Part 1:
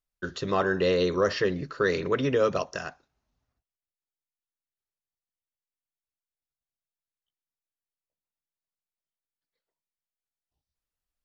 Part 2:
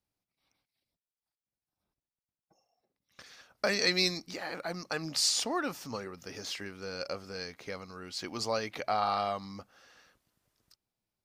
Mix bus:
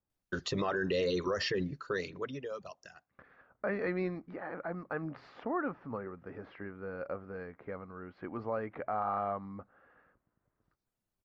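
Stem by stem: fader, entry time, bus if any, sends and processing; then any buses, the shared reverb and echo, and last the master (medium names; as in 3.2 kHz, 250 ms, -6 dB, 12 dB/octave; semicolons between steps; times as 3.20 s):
+0.5 dB, 0.10 s, no send, reverb removal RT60 1.2 s; auto duck -17 dB, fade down 0.95 s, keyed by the second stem
0.0 dB, 0.00 s, no send, low-pass 1.6 kHz 24 dB/octave; peaking EQ 820 Hz -2.5 dB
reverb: none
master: peak limiter -23.5 dBFS, peak gain reduction 11 dB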